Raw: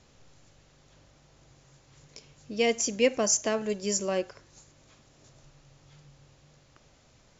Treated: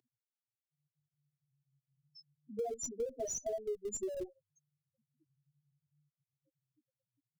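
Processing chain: chorus 0.3 Hz, delay 16.5 ms, depth 5.7 ms; loudest bins only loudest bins 2; Bessel high-pass 340 Hz, order 6; comb 2.7 ms, depth 65%; in parallel at -11.5 dB: Schmitt trigger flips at -38.5 dBFS; on the sum: bell 1200 Hz -9 dB 1.7 oct; compressor, threshold -44 dBFS, peak gain reduction 14.5 dB; gain +8.5 dB

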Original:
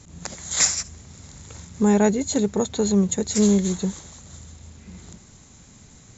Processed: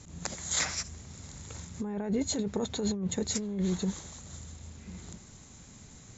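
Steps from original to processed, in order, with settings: treble ducked by the level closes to 2400 Hz, closed at -14 dBFS; negative-ratio compressor -24 dBFS, ratio -1; gain -6.5 dB

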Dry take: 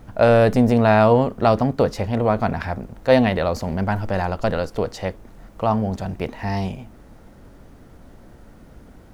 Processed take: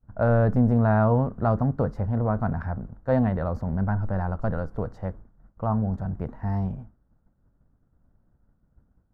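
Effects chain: expander -32 dBFS; EQ curve 150 Hz 0 dB, 380 Hz -10 dB, 1500 Hz -7 dB, 2500 Hz -27 dB

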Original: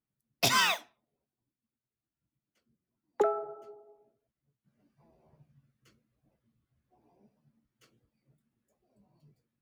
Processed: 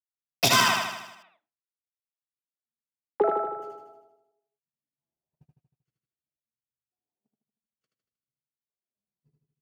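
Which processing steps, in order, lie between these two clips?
gate -58 dBFS, range -38 dB; 0.6–3.48 air absorption 430 m; feedback echo 78 ms, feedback 57%, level -3 dB; gain +4.5 dB

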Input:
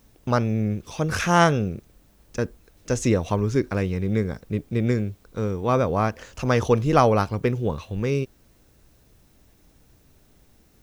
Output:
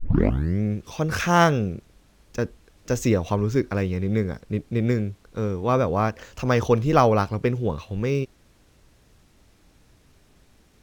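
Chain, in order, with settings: tape start at the beginning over 0.63 s; decimation joined by straight lines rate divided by 2×

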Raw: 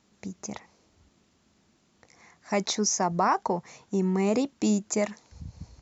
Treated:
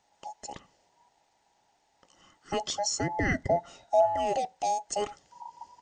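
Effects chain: band inversion scrambler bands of 1000 Hz; 3.48–4.05 small resonant body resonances 690/1400/3800 Hz, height 14 dB -> 17 dB; on a send: reverb RT60 0.35 s, pre-delay 3 ms, DRR 21.5 dB; on the sum: gain -4 dB

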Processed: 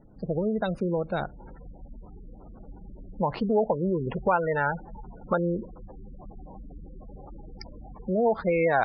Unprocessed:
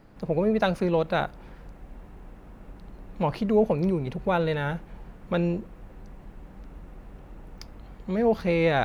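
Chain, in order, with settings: spectral gate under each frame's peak -20 dB strong; bell 1100 Hz -4 dB 2.1 oct, from 1.39 s +6 dB, from 3.37 s +15 dB; compressor 2.5:1, threshold -24 dBFS, peak gain reduction 10.5 dB

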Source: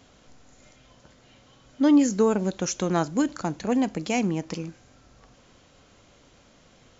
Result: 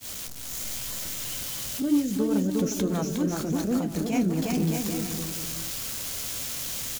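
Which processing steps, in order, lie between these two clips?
switching spikes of -26.5 dBFS; low shelf 370 Hz +9.5 dB; compressor 2.5:1, threshold -28 dBFS, peak gain reduction 13 dB; bouncing-ball echo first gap 0.36 s, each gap 0.7×, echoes 5; transient shaper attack -6 dB, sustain 0 dB; expander -34 dBFS; flange 0.8 Hz, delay 8.5 ms, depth 9.9 ms, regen -55%; 1.82–4.42 rotary speaker horn 5 Hz; gain +6.5 dB

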